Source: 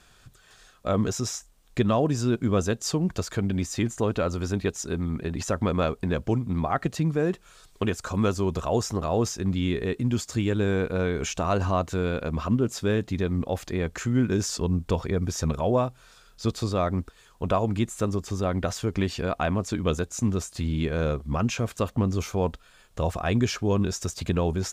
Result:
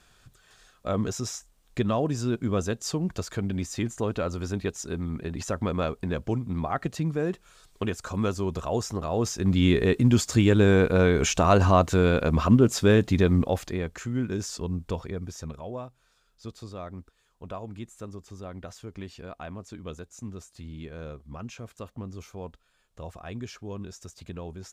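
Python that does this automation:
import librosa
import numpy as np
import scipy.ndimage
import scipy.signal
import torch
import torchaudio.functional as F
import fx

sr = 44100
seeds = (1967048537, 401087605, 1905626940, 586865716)

y = fx.gain(x, sr, db=fx.line((9.13, -3.0), (9.65, 5.5), (13.34, 5.5), (13.96, -5.5), (14.93, -5.5), (15.69, -13.5)))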